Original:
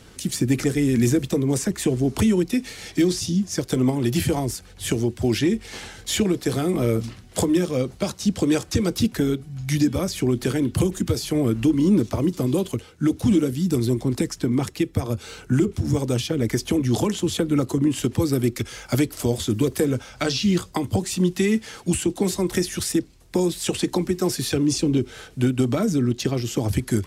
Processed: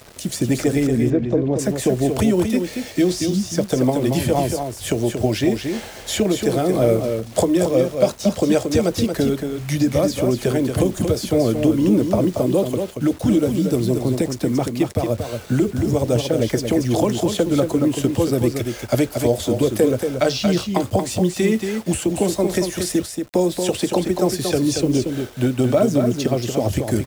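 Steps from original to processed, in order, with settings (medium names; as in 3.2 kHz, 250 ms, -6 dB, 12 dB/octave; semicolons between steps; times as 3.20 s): peaking EQ 610 Hz +12.5 dB 0.7 oct; bit crusher 7-bit; 0.87–1.59 s: tape spacing loss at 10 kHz 35 dB; on a send: delay 230 ms -6 dB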